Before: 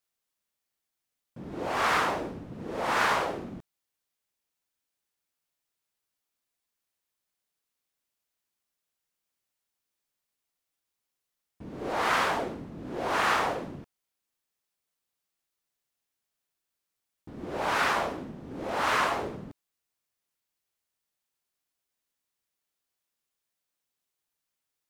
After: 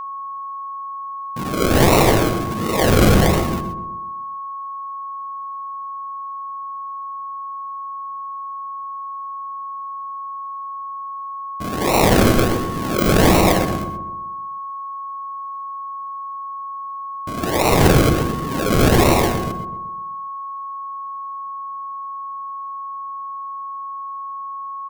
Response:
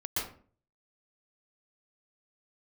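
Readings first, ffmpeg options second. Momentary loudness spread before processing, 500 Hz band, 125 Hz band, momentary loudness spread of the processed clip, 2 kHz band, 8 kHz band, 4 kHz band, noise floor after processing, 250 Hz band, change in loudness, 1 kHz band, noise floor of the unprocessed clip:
18 LU, +15.5 dB, +25.5 dB, 16 LU, +6.0 dB, +17.0 dB, +11.5 dB, -30 dBFS, +20.0 dB, +7.0 dB, +10.5 dB, -85 dBFS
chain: -filter_complex "[0:a]acrusher=samples=38:mix=1:aa=0.000001:lfo=1:lforange=22.8:lforate=1.4,highshelf=f=11000:g=4.5,asplit=2[s0][s1];[s1]adelay=127,lowpass=f=1000:p=1,volume=0.398,asplit=2[s2][s3];[s3]adelay=127,lowpass=f=1000:p=1,volume=0.53,asplit=2[s4][s5];[s5]adelay=127,lowpass=f=1000:p=1,volume=0.53,asplit=2[s6][s7];[s7]adelay=127,lowpass=f=1000:p=1,volume=0.53,asplit=2[s8][s9];[s9]adelay=127,lowpass=f=1000:p=1,volume=0.53,asplit=2[s10][s11];[s11]adelay=127,lowpass=f=1000:p=1,volume=0.53[s12];[s0][s2][s4][s6][s8][s10][s12]amix=inputs=7:normalize=0,asplit=2[s13][s14];[1:a]atrim=start_sample=2205,atrim=end_sample=6174[s15];[s14][s15]afir=irnorm=-1:irlink=0,volume=0.237[s16];[s13][s16]amix=inputs=2:normalize=0,aeval=exprs='val(0)+0.01*sin(2*PI*1100*n/s)':c=same,alimiter=level_in=5.96:limit=0.891:release=50:level=0:latency=1,volume=0.75"

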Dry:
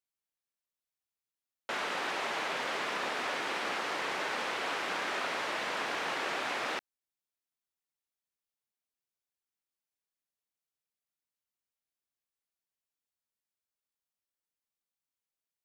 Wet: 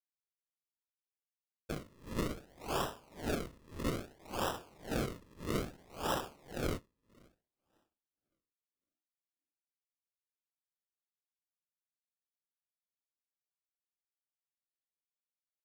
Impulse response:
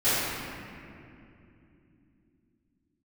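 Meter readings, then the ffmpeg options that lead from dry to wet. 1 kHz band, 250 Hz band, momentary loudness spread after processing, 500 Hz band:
-7.5 dB, +5.0 dB, 9 LU, -2.0 dB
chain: -filter_complex "[0:a]asplit=2[s0][s1];[s1]adelay=583.1,volume=0.251,highshelf=f=4000:g=-13.1[s2];[s0][s2]amix=inputs=2:normalize=0,agate=range=0.0224:threshold=0.0224:ratio=3:detection=peak,asplit=2[s3][s4];[s4]highpass=f=640:p=1[s5];[1:a]atrim=start_sample=2205,adelay=104[s6];[s5][s6]afir=irnorm=-1:irlink=0,volume=0.0178[s7];[s3][s7]amix=inputs=2:normalize=0,acrusher=samples=40:mix=1:aa=0.000001:lfo=1:lforange=40:lforate=0.61,aeval=exprs='val(0)*pow(10,-30*(0.5-0.5*cos(2*PI*1.8*n/s))/20)':c=same,volume=1.33"

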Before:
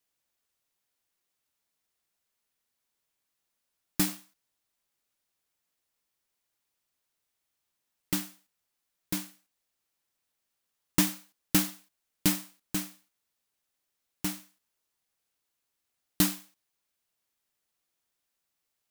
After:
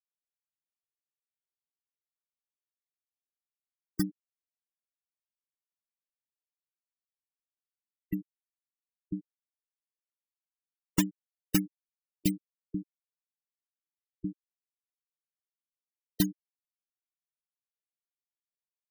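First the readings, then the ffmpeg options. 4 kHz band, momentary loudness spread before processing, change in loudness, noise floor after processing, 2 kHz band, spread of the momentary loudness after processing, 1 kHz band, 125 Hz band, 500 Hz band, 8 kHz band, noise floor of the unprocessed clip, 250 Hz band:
-8.0 dB, 17 LU, -4.5 dB, under -85 dBFS, -8.0 dB, 11 LU, -9.0 dB, 0.0 dB, -2.0 dB, -9.0 dB, -83 dBFS, 0.0 dB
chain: -af "afftfilt=real='re*gte(hypot(re,im),0.0708)':imag='im*gte(hypot(re,im),0.0708)':win_size=1024:overlap=0.75"

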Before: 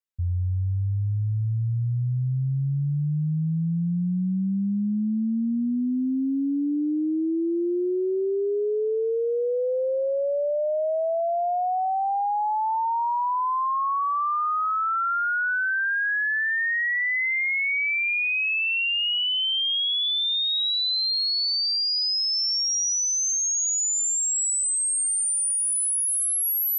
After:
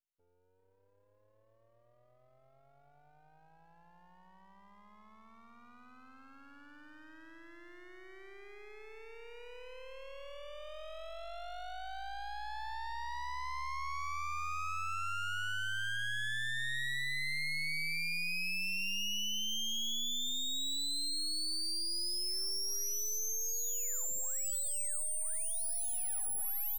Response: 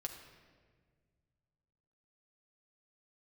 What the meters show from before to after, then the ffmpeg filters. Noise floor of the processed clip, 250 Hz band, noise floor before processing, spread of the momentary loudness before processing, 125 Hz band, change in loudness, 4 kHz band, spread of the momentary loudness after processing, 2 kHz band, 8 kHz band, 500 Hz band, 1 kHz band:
-69 dBFS, -29.5 dB, -25 dBFS, 5 LU, -28.0 dB, -12.0 dB, -13.0 dB, 17 LU, -13.5 dB, -13.0 dB, -25.5 dB, -17.5 dB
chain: -filter_complex "[0:a]aeval=exprs='0.0891*(cos(1*acos(clip(val(0)/0.0891,-1,1)))-cos(1*PI/2))+0.00794*(cos(5*acos(clip(val(0)/0.0891,-1,1)))-cos(5*PI/2))':c=same,highpass=1100,asplit=2[s0][s1];[s1]adelay=390.7,volume=0.355,highshelf=f=4000:g=-8.79[s2];[s0][s2]amix=inputs=2:normalize=0,aeval=exprs='max(val(0),0)':c=same,volume=0.422"

